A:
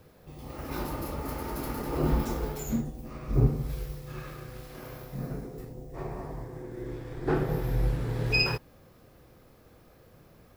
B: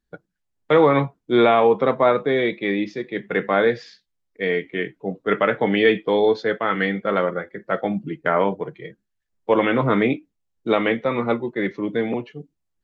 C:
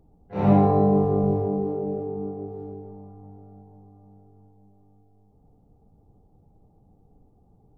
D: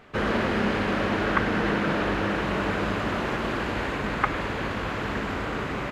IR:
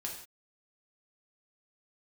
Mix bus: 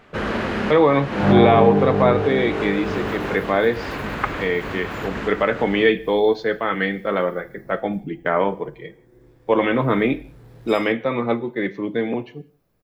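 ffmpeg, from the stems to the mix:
-filter_complex "[0:a]volume=26dB,asoftclip=hard,volume=-26dB,highshelf=frequency=12000:gain=6,adelay=2350,volume=-14dB[link_01];[1:a]bandreject=frequency=1400:width=18,volume=-1.5dB,asplit=3[link_02][link_03][link_04];[link_03]volume=-11dB[link_05];[2:a]adelay=800,volume=1.5dB[link_06];[3:a]volume=1dB[link_07];[link_04]apad=whole_len=260833[link_08];[link_07][link_08]sidechaincompress=threshold=-24dB:ratio=8:attack=21:release=270[link_09];[4:a]atrim=start_sample=2205[link_10];[link_05][link_10]afir=irnorm=-1:irlink=0[link_11];[link_01][link_02][link_06][link_09][link_11]amix=inputs=5:normalize=0"

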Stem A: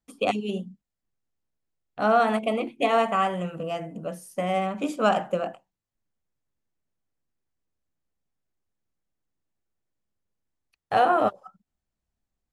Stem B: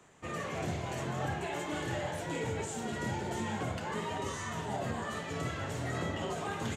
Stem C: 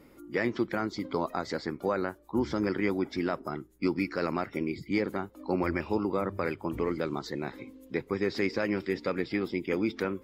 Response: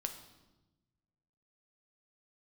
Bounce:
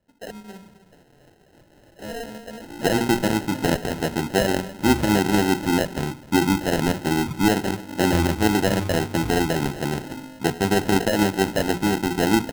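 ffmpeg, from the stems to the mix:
-filter_complex "[0:a]equalizer=frequency=680:width_type=o:width=3:gain=3.5,volume=-18dB,asplit=2[link_01][link_02];[link_02]volume=-14.5dB[link_03];[1:a]aexciter=amount=8.6:drive=9.2:freq=7700,highpass=frequency=600:poles=1,volume=-19.5dB[link_04];[2:a]agate=range=-33dB:threshold=-50dB:ratio=3:detection=peak,adelay=2500,volume=3dB,asplit=3[link_05][link_06][link_07];[link_06]volume=-9.5dB[link_08];[link_07]volume=-18.5dB[link_09];[3:a]atrim=start_sample=2205[link_10];[link_08][link_10]afir=irnorm=-1:irlink=0[link_11];[link_03][link_09]amix=inputs=2:normalize=0,aecho=0:1:265:1[link_12];[link_01][link_04][link_05][link_11][link_12]amix=inputs=5:normalize=0,lowshelf=frequency=300:gain=10.5,bandreject=frequency=60:width_type=h:width=6,bandreject=frequency=120:width_type=h:width=6,bandreject=frequency=180:width_type=h:width=6,bandreject=frequency=240:width_type=h:width=6,bandreject=frequency=300:width_type=h:width=6,bandreject=frequency=360:width_type=h:width=6,bandreject=frequency=420:width_type=h:width=6,acrusher=samples=38:mix=1:aa=0.000001"

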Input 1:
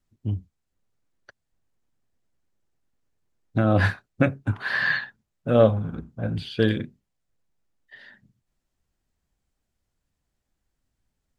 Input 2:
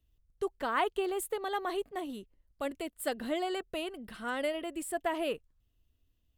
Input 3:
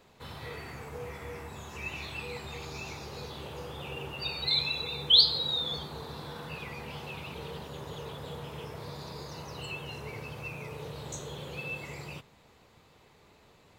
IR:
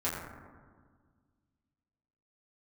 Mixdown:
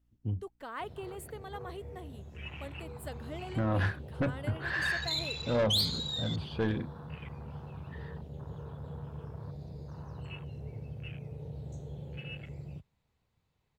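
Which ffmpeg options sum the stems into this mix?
-filter_complex "[0:a]highshelf=frequency=3300:gain=-7.5,volume=-5.5dB[link_01];[1:a]aeval=exprs='val(0)+0.000631*(sin(2*PI*60*n/s)+sin(2*PI*2*60*n/s)/2+sin(2*PI*3*60*n/s)/3+sin(2*PI*4*60*n/s)/4+sin(2*PI*5*60*n/s)/5)':channel_layout=same,volume=-10dB[link_02];[2:a]afwtdn=0.01,bandreject=frequency=1200:width=29,asubboost=boost=3:cutoff=190,adelay=600,volume=-5dB[link_03];[link_01][link_02][link_03]amix=inputs=3:normalize=0,asoftclip=type=tanh:threshold=-23dB"

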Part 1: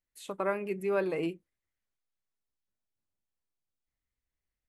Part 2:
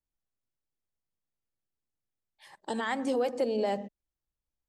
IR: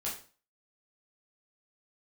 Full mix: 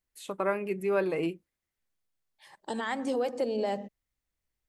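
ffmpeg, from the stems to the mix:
-filter_complex "[0:a]volume=2dB[link_01];[1:a]volume=-1dB[link_02];[link_01][link_02]amix=inputs=2:normalize=0"

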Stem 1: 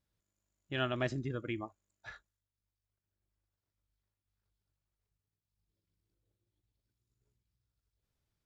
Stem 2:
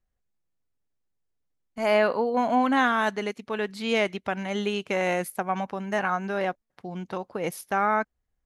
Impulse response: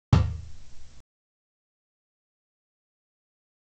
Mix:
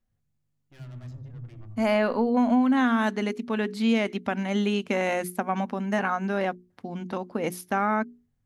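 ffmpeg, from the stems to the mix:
-filter_complex "[0:a]aeval=exprs='(tanh(112*val(0)+0.75)-tanh(0.75))/112':channel_layout=same,aeval=exprs='val(0)+0.0001*(sin(2*PI*50*n/s)+sin(2*PI*2*50*n/s)/2+sin(2*PI*3*50*n/s)/3+sin(2*PI*4*50*n/s)/4+sin(2*PI*5*50*n/s)/5)':channel_layout=same,volume=-9.5dB,asplit=2[link_01][link_02];[link_02]volume=-23.5dB[link_03];[1:a]equalizer=frequency=240:width_type=o:width=0.38:gain=14.5,bandreject=frequency=60:width_type=h:width=6,bandreject=frequency=120:width_type=h:width=6,bandreject=frequency=180:width_type=h:width=6,bandreject=frequency=240:width_type=h:width=6,bandreject=frequency=300:width_type=h:width=6,bandreject=frequency=360:width_type=h:width=6,bandreject=frequency=420:width_type=h:width=6,volume=0dB[link_04];[2:a]atrim=start_sample=2205[link_05];[link_03][link_05]afir=irnorm=-1:irlink=0[link_06];[link_01][link_04][link_06]amix=inputs=3:normalize=0,acompressor=threshold=-19dB:ratio=4"

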